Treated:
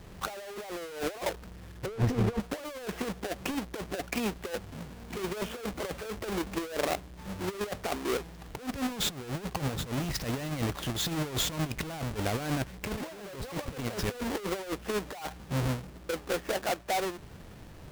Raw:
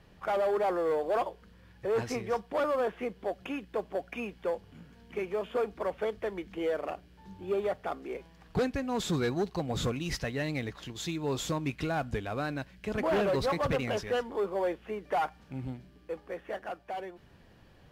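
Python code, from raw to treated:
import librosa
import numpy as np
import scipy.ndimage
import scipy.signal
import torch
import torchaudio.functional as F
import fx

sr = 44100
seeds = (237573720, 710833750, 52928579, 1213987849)

y = fx.halfwave_hold(x, sr)
y = fx.over_compress(y, sr, threshold_db=-32.0, ratio=-0.5)
y = fx.tilt_eq(y, sr, slope=-2.5, at=(1.86, 2.4))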